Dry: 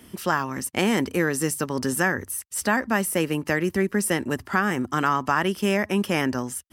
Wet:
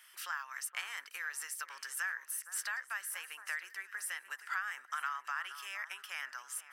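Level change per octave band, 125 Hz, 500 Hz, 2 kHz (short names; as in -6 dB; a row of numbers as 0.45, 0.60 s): under -40 dB, -39.0 dB, -11.0 dB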